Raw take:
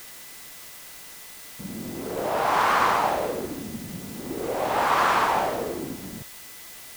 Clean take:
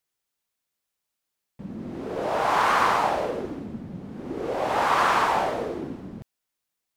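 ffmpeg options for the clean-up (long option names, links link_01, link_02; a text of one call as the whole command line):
ffmpeg -i in.wav -af "adeclick=threshold=4,bandreject=frequency=2000:width=30,afwtdn=0.0071" out.wav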